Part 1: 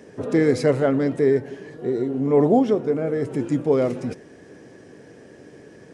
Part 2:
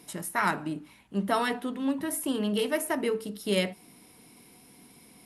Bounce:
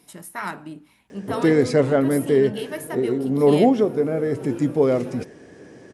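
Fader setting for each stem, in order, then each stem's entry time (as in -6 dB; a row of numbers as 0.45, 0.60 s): +1.0, -3.5 dB; 1.10, 0.00 s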